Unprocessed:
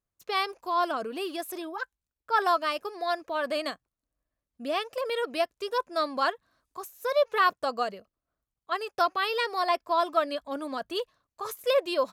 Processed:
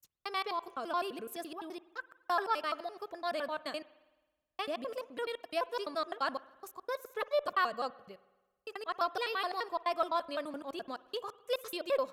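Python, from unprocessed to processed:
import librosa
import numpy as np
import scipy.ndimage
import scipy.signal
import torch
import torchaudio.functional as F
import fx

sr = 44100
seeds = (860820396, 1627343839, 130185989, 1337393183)

y = fx.block_reorder(x, sr, ms=85.0, group=3)
y = fx.rev_spring(y, sr, rt60_s=1.2, pass_ms=(53,), chirp_ms=80, drr_db=18.5)
y = fx.cheby_harmonics(y, sr, harmonics=(4, 6), levels_db=(-34, -42), full_scale_db=-11.0)
y = F.gain(torch.from_numpy(y), -7.0).numpy()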